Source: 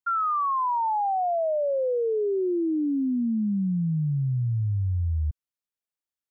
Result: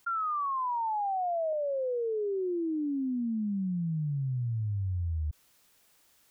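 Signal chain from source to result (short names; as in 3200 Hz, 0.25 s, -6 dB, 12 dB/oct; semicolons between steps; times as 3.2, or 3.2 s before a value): 0.46–1.53 tilt -2.5 dB/oct; fast leveller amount 50%; gain -7 dB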